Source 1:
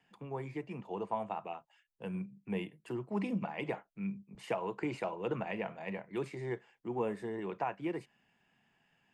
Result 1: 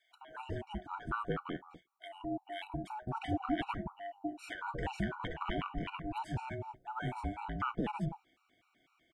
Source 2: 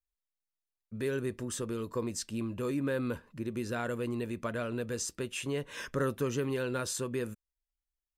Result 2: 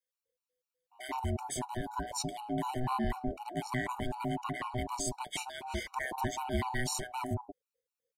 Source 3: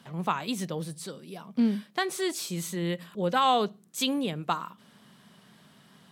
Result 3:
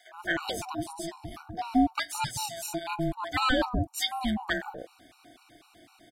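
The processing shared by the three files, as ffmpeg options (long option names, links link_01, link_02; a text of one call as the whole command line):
ffmpeg -i in.wav -filter_complex "[0:a]aeval=exprs='val(0)*sin(2*PI*500*n/s)':channel_layout=same,acrossover=split=760[link_01][link_02];[link_01]adelay=170[link_03];[link_03][link_02]amix=inputs=2:normalize=0,afftfilt=real='re*gt(sin(2*PI*4*pts/sr)*(1-2*mod(floor(b*sr/1024/750),2)),0)':imag='im*gt(sin(2*PI*4*pts/sr)*(1-2*mod(floor(b*sr/1024/750),2)),0)':win_size=1024:overlap=0.75,volume=6.5dB" out.wav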